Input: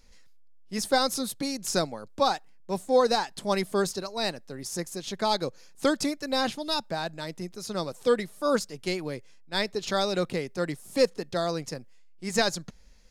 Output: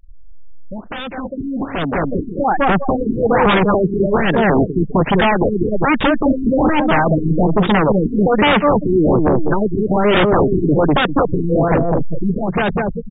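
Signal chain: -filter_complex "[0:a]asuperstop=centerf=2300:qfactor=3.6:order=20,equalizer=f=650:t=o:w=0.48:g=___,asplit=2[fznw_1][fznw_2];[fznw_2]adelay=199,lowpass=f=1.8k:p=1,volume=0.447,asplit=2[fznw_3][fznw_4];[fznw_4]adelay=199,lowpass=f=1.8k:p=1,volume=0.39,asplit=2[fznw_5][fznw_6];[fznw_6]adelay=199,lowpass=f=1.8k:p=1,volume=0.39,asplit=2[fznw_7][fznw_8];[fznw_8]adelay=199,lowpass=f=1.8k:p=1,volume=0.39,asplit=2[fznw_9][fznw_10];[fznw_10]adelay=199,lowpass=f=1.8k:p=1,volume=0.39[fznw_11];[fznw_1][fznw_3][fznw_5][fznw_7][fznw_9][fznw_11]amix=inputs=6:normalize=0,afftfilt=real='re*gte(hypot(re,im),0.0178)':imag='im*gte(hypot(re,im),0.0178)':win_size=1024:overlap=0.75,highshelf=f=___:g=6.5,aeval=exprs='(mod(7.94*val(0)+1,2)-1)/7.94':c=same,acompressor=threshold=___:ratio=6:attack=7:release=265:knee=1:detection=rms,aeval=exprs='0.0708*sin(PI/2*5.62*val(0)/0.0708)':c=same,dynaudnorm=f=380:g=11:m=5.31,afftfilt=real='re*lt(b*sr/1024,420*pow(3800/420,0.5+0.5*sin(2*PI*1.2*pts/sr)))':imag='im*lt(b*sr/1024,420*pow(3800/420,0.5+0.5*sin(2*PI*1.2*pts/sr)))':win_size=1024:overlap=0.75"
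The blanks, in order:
-4.5, 8.5k, 0.02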